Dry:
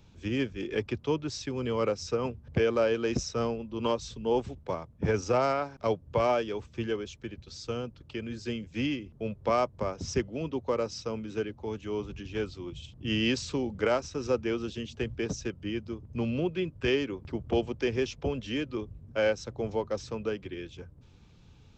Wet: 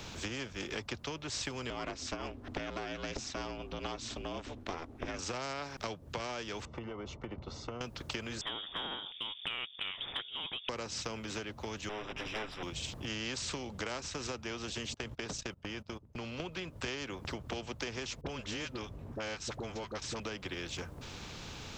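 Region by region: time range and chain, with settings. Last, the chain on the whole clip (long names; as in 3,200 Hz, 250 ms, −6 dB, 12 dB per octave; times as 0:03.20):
0:01.70–0:05.19: high-shelf EQ 6,600 Hz −11.5 dB + ring modulation 170 Hz
0:06.65–0:07.81: Savitzky-Golay smoothing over 65 samples + downward compressor, threshold −40 dBFS
0:08.41–0:10.69: voice inversion scrambler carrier 3,500 Hz + one half of a high-frequency compander decoder only
0:11.89–0:12.63: lower of the sound and its delayed copy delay 7.5 ms + Savitzky-Golay smoothing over 25 samples + parametric band 120 Hz −14 dB 2 octaves
0:14.94–0:16.40: noise gate −40 dBFS, range −27 dB + downward compressor 3 to 1, threshold −45 dBFS
0:18.21–0:20.20: all-pass dispersion highs, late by 45 ms, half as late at 670 Hz + one half of a high-frequency compander decoder only
whole clip: downward compressor 6 to 1, threshold −41 dBFS; every bin compressed towards the loudest bin 2 to 1; level +8.5 dB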